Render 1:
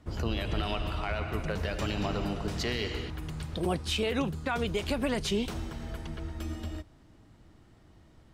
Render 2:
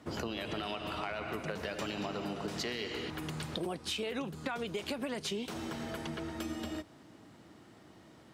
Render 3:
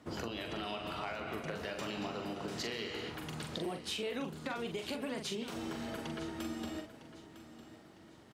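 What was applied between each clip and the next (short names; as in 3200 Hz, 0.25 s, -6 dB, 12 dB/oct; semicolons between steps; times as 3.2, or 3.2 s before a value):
HPF 190 Hz 12 dB/oct; compressor, threshold -40 dBFS, peak gain reduction 13.5 dB; gain +5.5 dB
doubler 43 ms -6 dB; feedback echo 0.955 s, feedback 37%, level -15 dB; gain -3 dB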